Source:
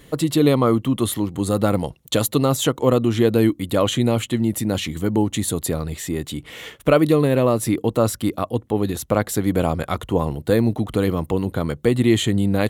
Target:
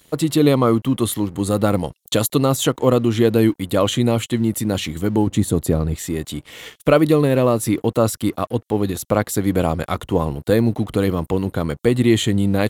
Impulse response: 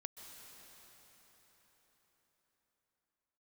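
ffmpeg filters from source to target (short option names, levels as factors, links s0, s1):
-filter_complex "[0:a]asettb=1/sr,asplit=3[s0][s1][s2];[s0]atrim=end=5.274[s3];[s1]atrim=start=5.27:end=5.96,asetpts=PTS-STARTPTS,afade=t=in:d=0.004:c=qsin,afade=t=out:st=0.686:d=0.004:c=qsin,tiltshelf=f=970:g=5.5[s4];[s2]atrim=start=5.956[s5];[s3][s4]acrossfade=d=0.004:c1=hsin:c2=qsin[s6];[s6][s5]acrossfade=d=0.004:c1=qsin:c2=hsin,acrossover=split=3500[s7][s8];[s7]aeval=exprs='sgn(val(0))*max(abs(val(0))-0.00473,0)':c=same[s9];[s9][s8]amix=inputs=2:normalize=0,volume=1.19"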